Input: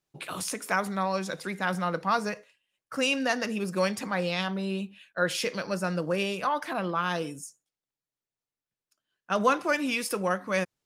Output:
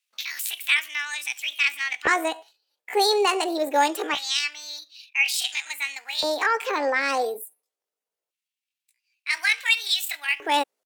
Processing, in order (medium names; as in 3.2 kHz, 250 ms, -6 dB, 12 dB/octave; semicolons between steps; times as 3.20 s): LFO high-pass square 0.24 Hz 300–1700 Hz; pitch shift +7.5 st; trim +4 dB